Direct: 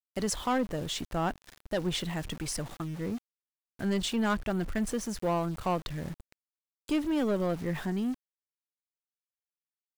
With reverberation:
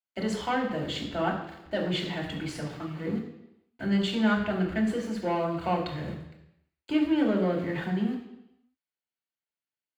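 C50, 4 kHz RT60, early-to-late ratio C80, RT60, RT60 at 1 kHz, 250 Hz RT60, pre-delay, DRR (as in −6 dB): 6.5 dB, 0.90 s, 8.5 dB, 0.85 s, 0.85 s, 0.85 s, 3 ms, −3.0 dB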